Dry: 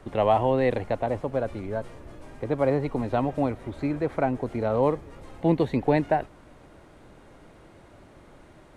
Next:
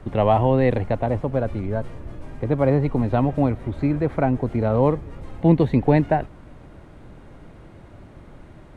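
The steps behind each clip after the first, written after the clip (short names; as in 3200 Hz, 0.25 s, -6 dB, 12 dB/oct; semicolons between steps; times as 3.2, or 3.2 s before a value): tone controls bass +8 dB, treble -5 dB; gain +2.5 dB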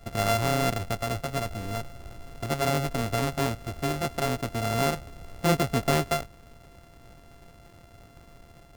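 sample sorter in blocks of 64 samples; gain -7.5 dB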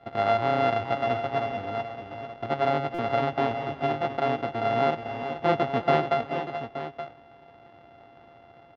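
speaker cabinet 160–3300 Hz, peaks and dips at 180 Hz -8 dB, 780 Hz +8 dB, 2500 Hz -5 dB; tapped delay 0.352/0.414/0.431/0.451/0.874 s -20/-16.5/-9/-18/-11 dB; stuck buffer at 2.94, samples 256, times 7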